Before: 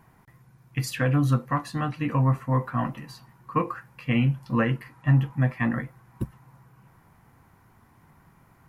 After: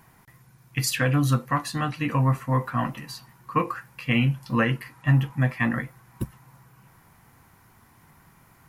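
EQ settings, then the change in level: high shelf 2100 Hz +9.5 dB; 0.0 dB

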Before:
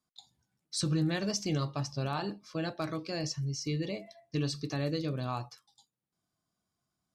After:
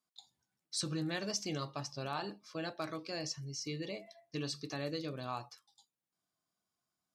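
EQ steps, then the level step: low shelf 150 Hz -9.5 dB; low shelf 360 Hz -3.5 dB; -2.5 dB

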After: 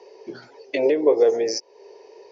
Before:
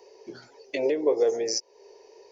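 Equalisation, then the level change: BPF 110–6100 Hz; air absorption 75 m; +6.0 dB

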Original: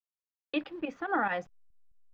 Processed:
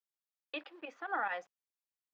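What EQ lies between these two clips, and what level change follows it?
HPF 580 Hz 12 dB/oct; -4.5 dB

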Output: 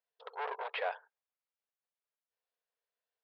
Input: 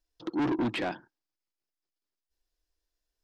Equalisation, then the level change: brick-wall FIR high-pass 410 Hz; Bessel low-pass 2500 Hz, order 8; -1.0 dB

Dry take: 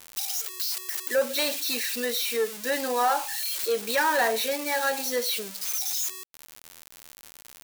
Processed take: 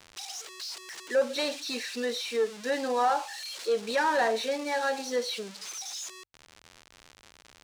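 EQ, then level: notches 50/100 Hz; dynamic EQ 2100 Hz, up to -4 dB, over -40 dBFS, Q 0.77; air absorption 93 m; 0.0 dB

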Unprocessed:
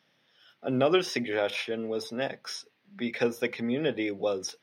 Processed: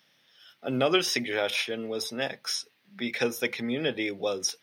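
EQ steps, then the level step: tilt +3 dB/oct; low shelf 220 Hz +11 dB; 0.0 dB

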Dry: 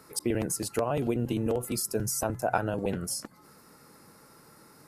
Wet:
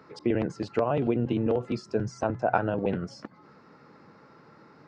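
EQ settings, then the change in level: Gaussian blur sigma 2.3 samples; HPF 95 Hz; +3.0 dB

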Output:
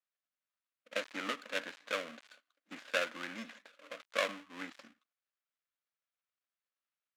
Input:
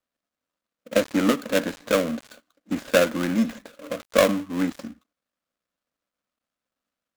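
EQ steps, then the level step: band-pass 2300 Hz, Q 0.82; -7.5 dB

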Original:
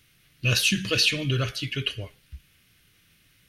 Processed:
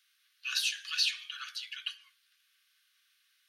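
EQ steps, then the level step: rippled Chebyshev high-pass 1100 Hz, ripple 6 dB; -5.5 dB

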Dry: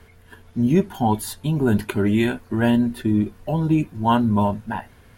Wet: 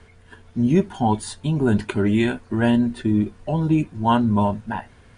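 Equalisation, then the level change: brick-wall FIR low-pass 10000 Hz; 0.0 dB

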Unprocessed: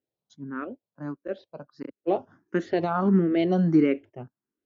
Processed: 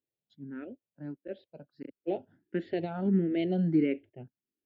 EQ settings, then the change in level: fixed phaser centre 2700 Hz, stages 4; -5.0 dB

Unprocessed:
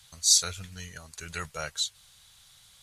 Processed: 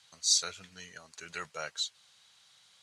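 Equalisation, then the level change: BPF 240–6400 Hz; notch 3500 Hz, Q 27; -3.0 dB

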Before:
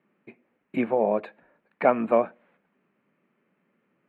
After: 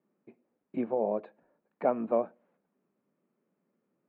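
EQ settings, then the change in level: air absorption 160 m; low shelf 210 Hz -9 dB; bell 2200 Hz -14.5 dB 2.2 oct; -1.5 dB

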